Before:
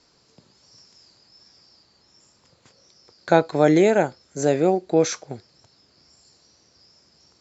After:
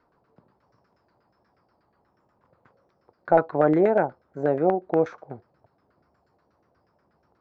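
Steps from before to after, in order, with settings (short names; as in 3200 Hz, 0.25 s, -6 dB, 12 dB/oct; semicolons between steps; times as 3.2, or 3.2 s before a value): hard clip -7.5 dBFS, distortion -21 dB; LFO low-pass saw down 8.3 Hz 640–1600 Hz; gain -5 dB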